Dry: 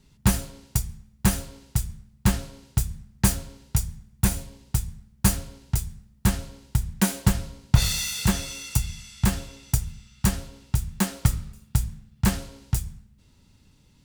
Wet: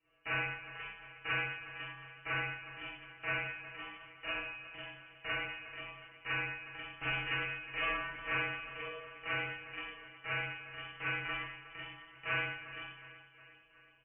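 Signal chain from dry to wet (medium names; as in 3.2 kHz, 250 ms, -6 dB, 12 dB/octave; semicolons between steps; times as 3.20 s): spectral gate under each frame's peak -20 dB weak; high-pass 130 Hz; distance through air 140 m; feedback comb 170 Hz, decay 0.39 s, harmonics all, mix 100%; feedback delay 362 ms, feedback 57%, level -15 dB; Schroeder reverb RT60 0.78 s, combs from 30 ms, DRR -9 dB; frequency inversion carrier 3.2 kHz; trim +6 dB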